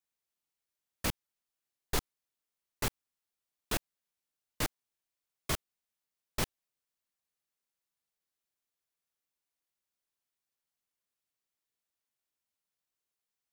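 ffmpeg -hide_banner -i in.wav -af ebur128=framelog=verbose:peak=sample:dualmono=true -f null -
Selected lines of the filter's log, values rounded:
Integrated loudness:
  I:         -34.5 LUFS
  Threshold: -44.6 LUFS
Loudness range:
  LRA:         5.9 LU
  Threshold: -58.6 LUFS
  LRA low:   -42.9 LUFS
  LRA high:  -37.0 LUFS
Sample peak:
  Peak:      -17.1 dBFS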